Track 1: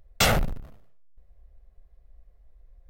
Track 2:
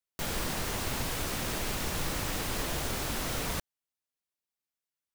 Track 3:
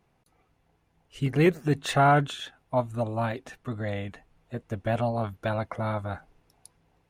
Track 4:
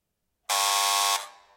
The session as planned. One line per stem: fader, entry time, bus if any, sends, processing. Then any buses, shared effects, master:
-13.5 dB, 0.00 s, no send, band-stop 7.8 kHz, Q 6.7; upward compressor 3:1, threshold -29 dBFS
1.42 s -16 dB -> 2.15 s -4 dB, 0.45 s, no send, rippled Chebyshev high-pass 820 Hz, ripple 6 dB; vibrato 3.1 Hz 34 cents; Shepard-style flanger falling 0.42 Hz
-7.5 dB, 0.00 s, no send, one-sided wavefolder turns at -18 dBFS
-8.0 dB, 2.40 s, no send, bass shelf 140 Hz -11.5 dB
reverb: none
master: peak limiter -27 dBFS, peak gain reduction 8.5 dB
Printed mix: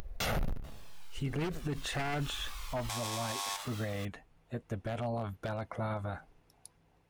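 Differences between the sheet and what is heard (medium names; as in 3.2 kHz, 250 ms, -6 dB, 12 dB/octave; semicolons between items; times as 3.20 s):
stem 1 -13.5 dB -> -2.5 dB; stem 3 -7.5 dB -> -1.5 dB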